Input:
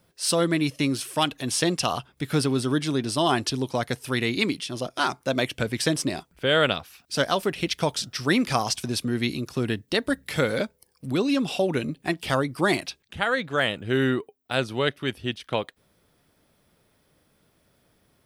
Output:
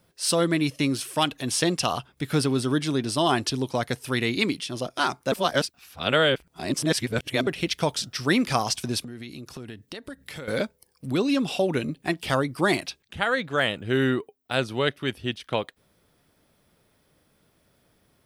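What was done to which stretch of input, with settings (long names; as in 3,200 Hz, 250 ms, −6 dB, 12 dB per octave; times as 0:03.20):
0:05.32–0:07.47: reverse
0:09.02–0:10.48: downward compressor 5 to 1, threshold −36 dBFS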